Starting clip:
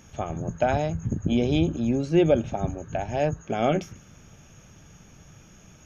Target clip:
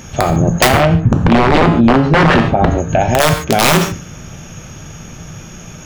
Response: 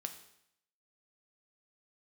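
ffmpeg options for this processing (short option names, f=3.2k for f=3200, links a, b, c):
-filter_complex "[0:a]aeval=exprs='(mod(6.68*val(0)+1,2)-1)/6.68':c=same,asettb=1/sr,asplit=3[a][b][c];[a]atrim=end=0.684[d];[b]atrim=start=0.68:end=2.71,asetpts=PTS-STARTPTS,afade=t=in:d=0.004:c=qsin,afade=t=out:st=2.026:d=0.004:c=qsin,lowpass=2.2k[e];[c]atrim=start=2.706[f];[d][e]acrossfade=d=0.004:c1=hsin:c2=qsin[g];[g][f]acrossfade=d=0.004:c1=qsin:c2=hsin[h];[1:a]atrim=start_sample=2205,afade=t=out:st=0.2:d=0.01,atrim=end_sample=9261[i];[h][i]afir=irnorm=-1:irlink=0,alimiter=level_in=21.5dB:limit=-1dB:release=50:level=0:latency=1,volume=-1dB"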